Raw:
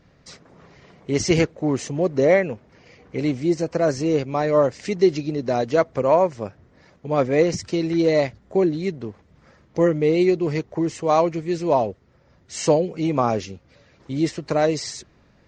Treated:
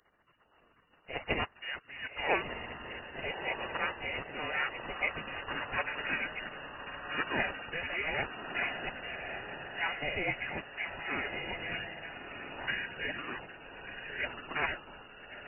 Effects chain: echo that smears into a reverb 1294 ms, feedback 44%, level -6 dB; frequency inversion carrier 2.7 kHz; spectral gate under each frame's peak -20 dB weak

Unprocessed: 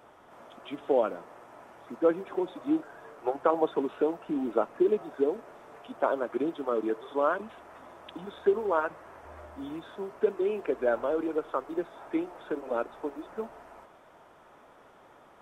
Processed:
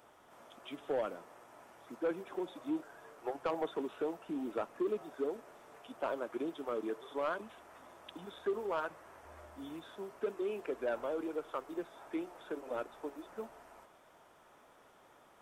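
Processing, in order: treble shelf 3.4 kHz +10 dB; saturation -19.5 dBFS, distortion -14 dB; trim -7.5 dB

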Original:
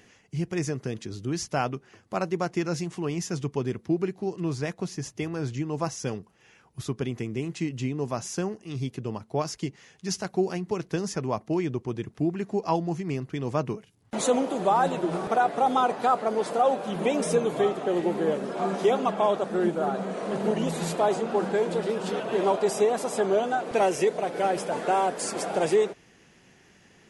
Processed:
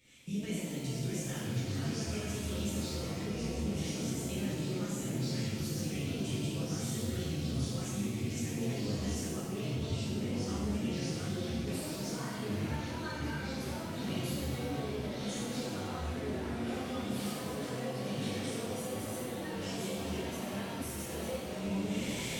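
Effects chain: recorder AGC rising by 30 dB/s; ever faster or slower copies 604 ms, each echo -4 st, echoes 3; pre-emphasis filter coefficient 0.8; compression, threshold -38 dBFS, peak gain reduction 11 dB; FFT filter 140 Hz 0 dB, 730 Hz -16 dB, 2 kHz -3 dB, 11 kHz -16 dB; wide varispeed 1.21×; pitch-shifted reverb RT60 1.3 s, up +7 st, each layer -8 dB, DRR -10 dB

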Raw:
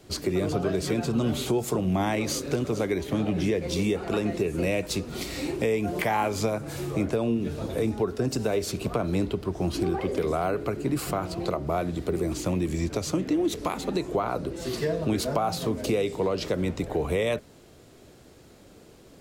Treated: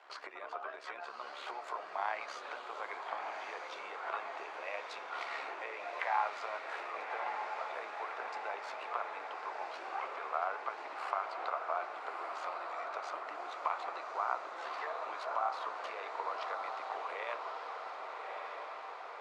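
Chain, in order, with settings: compression 4:1, threshold -33 dBFS, peak gain reduction 10.5 dB; high-pass 950 Hz 24 dB/octave; AM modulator 70 Hz, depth 40%; low-pass 1.2 kHz 12 dB/octave; echo that smears into a reverb 1205 ms, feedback 71%, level -4.5 dB; trim +13 dB

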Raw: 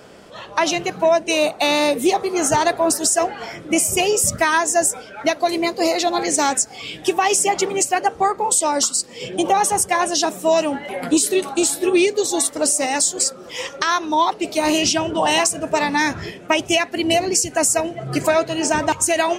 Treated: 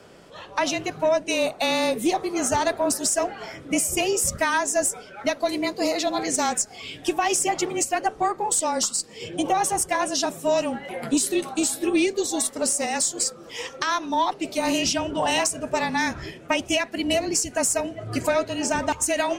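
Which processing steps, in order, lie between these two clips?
frequency shift -25 Hz; Chebyshev shaper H 2 -19 dB, 4 -45 dB, 5 -42 dB, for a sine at -3.5 dBFS; trim -5.5 dB

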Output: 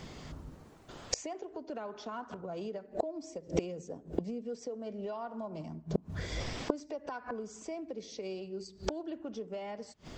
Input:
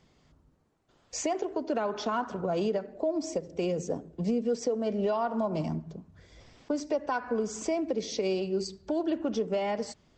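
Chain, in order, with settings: inverted gate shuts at -32 dBFS, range -28 dB; trim +17 dB

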